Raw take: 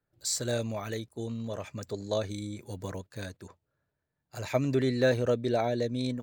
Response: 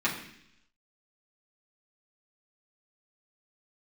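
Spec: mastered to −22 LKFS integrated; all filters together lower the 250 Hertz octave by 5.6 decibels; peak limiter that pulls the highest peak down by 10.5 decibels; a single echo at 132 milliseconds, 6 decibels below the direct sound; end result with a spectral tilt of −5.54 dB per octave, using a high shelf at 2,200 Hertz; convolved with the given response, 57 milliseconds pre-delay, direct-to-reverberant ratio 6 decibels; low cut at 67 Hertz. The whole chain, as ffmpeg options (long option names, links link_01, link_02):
-filter_complex "[0:a]highpass=67,equalizer=frequency=250:width_type=o:gain=-6.5,highshelf=frequency=2200:gain=-6.5,alimiter=level_in=1.5dB:limit=-24dB:level=0:latency=1,volume=-1.5dB,aecho=1:1:132:0.501,asplit=2[link_01][link_02];[1:a]atrim=start_sample=2205,adelay=57[link_03];[link_02][link_03]afir=irnorm=-1:irlink=0,volume=-16.5dB[link_04];[link_01][link_04]amix=inputs=2:normalize=0,volume=13.5dB"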